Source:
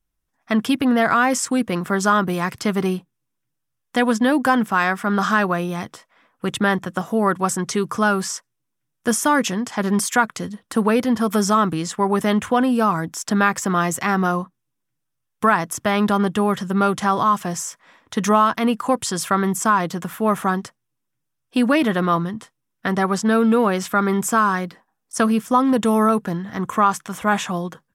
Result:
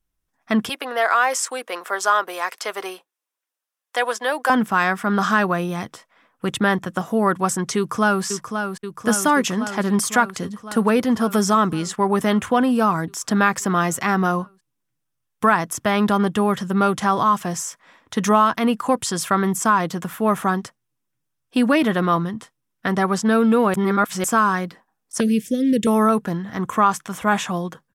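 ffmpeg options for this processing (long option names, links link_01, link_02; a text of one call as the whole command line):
ffmpeg -i in.wav -filter_complex "[0:a]asettb=1/sr,asplit=3[link_01][link_02][link_03];[link_01]atrim=end=0.694[link_04];[link_02]atrim=start=0.69:end=4.5,asetpts=PTS-STARTPTS,afade=type=in:duration=0.004:curve=qsin,afade=type=out:start_time=3.806:duration=0.004:curve=qsin,highpass=frequency=480:width=0.5412,highpass=frequency=480:width=1.3066[link_05];[link_03]atrim=start=4.496[link_06];[link_04][link_05]acrossfade=duration=0.004:curve1=hsin:curve2=qsin[link_07];[link_07][link_06]acrossfade=duration=0.004:curve1=qsin:curve2=hsin,asplit=2[link_08][link_09];[link_09]afade=type=in:start_time=7.77:duration=0.01,afade=type=out:start_time=8.24:duration=0.01,aecho=0:1:530|1060|1590|2120|2650|3180|3710|4240|4770|5300|5830|6360:0.446684|0.335013|0.25126|0.188445|0.141333|0.106|0.0795001|0.0596251|0.0447188|0.0335391|0.0251543|0.0188657[link_10];[link_08][link_10]amix=inputs=2:normalize=0,asettb=1/sr,asplit=3[link_11][link_12][link_13];[link_11]atrim=end=25.204[link_14];[link_12]atrim=start=25.2:end=25.87,asetpts=PTS-STARTPTS,afade=type=in:duration=0.004:curve=qsin,afade=type=out:start_time=0.666:duration=0.004:curve=qsin,asuperstop=centerf=1000:order=8:qfactor=0.73[link_15];[link_13]atrim=start=25.866[link_16];[link_14][link_15]acrossfade=duration=0.004:curve1=hsin:curve2=qsin[link_17];[link_17][link_16]acrossfade=duration=0.004:curve1=qsin:curve2=hsin,asplit=3[link_18][link_19][link_20];[link_18]atrim=end=23.742[link_21];[link_19]atrim=start=23.738:end=24.242,asetpts=PTS-STARTPTS,areverse[link_22];[link_20]atrim=start=24.238[link_23];[link_21][link_22]acrossfade=duration=0.004:curve1=hsin:curve2=hsin[link_24];[link_24][link_23]acrossfade=duration=0.004:curve1=hsin:curve2=hsin" out.wav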